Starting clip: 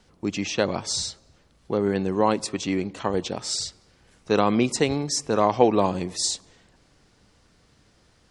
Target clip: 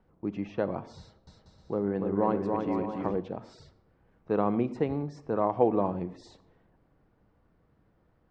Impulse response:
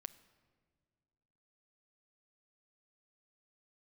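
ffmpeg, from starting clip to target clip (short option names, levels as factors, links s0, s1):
-filter_complex "[0:a]lowpass=1200,asettb=1/sr,asplit=3[s0][s1][s2];[s0]atrim=end=0.984[s3];[s1]atrim=start=0.98:end=3.16,asetpts=PTS-STARTPTS,afade=t=in:d=0.004:c=qsin,afade=t=out:st=2.176:d=0.004:c=qsin,aecho=1:1:290|478.5|601|680.7|732.4:0.631|0.398|0.251|0.158|0.1,atrim=end_sample=96138[s4];[s2]atrim=start=3.156[s5];[s3][s4]acrossfade=d=0.004:c1=hsin:c2=qsin[s6];[s6][s5]acrossfade=d=0.004:c1=qsin:c2=hsin[s7];[1:a]atrim=start_sample=2205,afade=t=out:st=0.22:d=0.01,atrim=end_sample=10143,asetrate=48510,aresample=44100[s8];[s7][s8]afir=irnorm=-1:irlink=0"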